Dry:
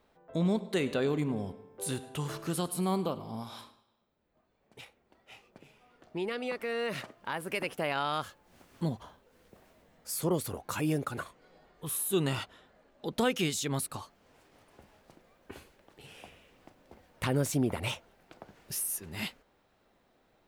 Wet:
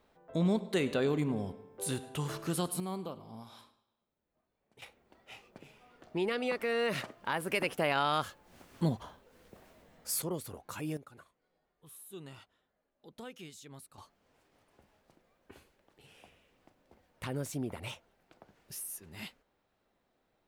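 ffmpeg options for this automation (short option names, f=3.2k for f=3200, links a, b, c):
-af "asetnsamples=n=441:p=0,asendcmd='2.8 volume volume -8.5dB;4.82 volume volume 2dB;10.22 volume volume -7.5dB;10.97 volume volume -18.5dB;13.98 volume volume -8dB',volume=-0.5dB"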